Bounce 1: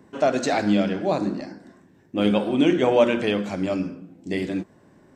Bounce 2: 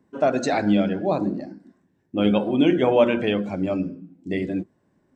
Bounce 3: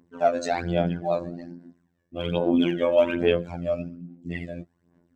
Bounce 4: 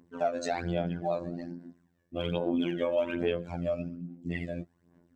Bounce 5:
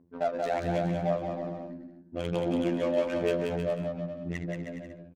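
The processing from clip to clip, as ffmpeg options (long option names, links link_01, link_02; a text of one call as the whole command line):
ffmpeg -i in.wav -af "afftdn=noise_reduction=13:noise_floor=-35,lowshelf=frequency=140:gain=3.5" out.wav
ffmpeg -i in.wav -af "afftfilt=real='hypot(re,im)*cos(PI*b)':imag='0':win_size=2048:overlap=0.75,aphaser=in_gain=1:out_gain=1:delay=1.8:decay=0.61:speed=1.2:type=sinusoidal,volume=-2.5dB" out.wav
ffmpeg -i in.wav -af "acompressor=threshold=-29dB:ratio=2.5" out.wav
ffmpeg -i in.wav -af "adynamicsmooth=sensitivity=5.5:basefreq=770,aecho=1:1:180|315|416.2|492.2|549.1:0.631|0.398|0.251|0.158|0.1" out.wav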